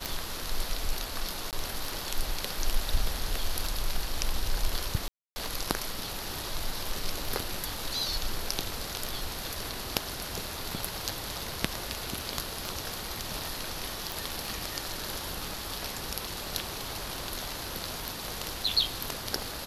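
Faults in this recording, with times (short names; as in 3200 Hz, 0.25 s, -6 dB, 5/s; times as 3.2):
tick 33 1/3 rpm
1.51–1.53 gap 18 ms
5.08–5.36 gap 0.28 s
14.12 pop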